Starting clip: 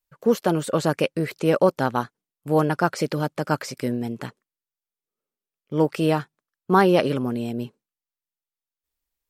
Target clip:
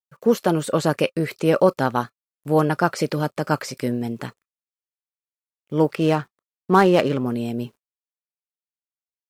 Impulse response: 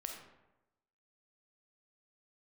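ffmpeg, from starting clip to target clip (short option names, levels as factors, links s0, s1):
-filter_complex "[0:a]asettb=1/sr,asplit=3[s0][s1][s2];[s0]atrim=end=5.954[s3];[s1]atrim=start=5.95:end=7.26,asetpts=PTS-STARTPTS,afade=t=in:d=0.004:c=qsin,afade=t=out:st=1.306:d=0.004:c=qsin,adynamicsmooth=sensitivity=6.5:basefreq=1800[s4];[s2]atrim=start=7.256[s5];[s3][s4]acrossfade=d=0.004:c1=hsin:c2=qsin[s6];[s6][s5]acrossfade=d=0.004:c1=qsin:c2=hsin,acrusher=bits=10:mix=0:aa=0.000001,asplit=2[s7][s8];[1:a]atrim=start_sample=2205,atrim=end_sample=3087,asetrate=83790,aresample=44100[s9];[s8][s9]afir=irnorm=-1:irlink=0,volume=0.631[s10];[s7][s10]amix=inputs=2:normalize=0"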